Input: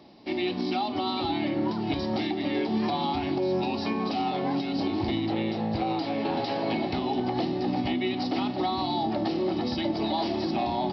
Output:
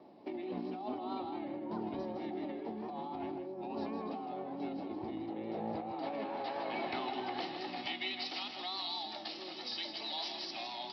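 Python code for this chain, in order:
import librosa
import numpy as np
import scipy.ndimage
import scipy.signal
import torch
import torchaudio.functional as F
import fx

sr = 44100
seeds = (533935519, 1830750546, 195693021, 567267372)

p1 = fx.filter_sweep_bandpass(x, sr, from_hz=540.0, to_hz=5000.0, start_s=5.4, end_s=8.65, q=0.74)
p2 = fx.vibrato(p1, sr, rate_hz=4.6, depth_cents=48.0)
p3 = fx.over_compress(p2, sr, threshold_db=-35.0, ratio=-1.0)
p4 = p3 + fx.echo_single(p3, sr, ms=158, db=-8.0, dry=0)
y = F.gain(torch.from_numpy(p4), -5.0).numpy()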